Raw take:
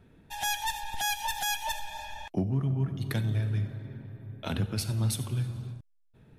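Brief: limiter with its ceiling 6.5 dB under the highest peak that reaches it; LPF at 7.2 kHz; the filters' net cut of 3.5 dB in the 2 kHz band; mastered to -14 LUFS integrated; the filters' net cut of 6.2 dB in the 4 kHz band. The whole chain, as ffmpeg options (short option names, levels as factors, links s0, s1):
-af "lowpass=7200,equalizer=f=2000:t=o:g=-3,equalizer=f=4000:t=o:g=-6.5,volume=11.2,alimiter=limit=0.596:level=0:latency=1"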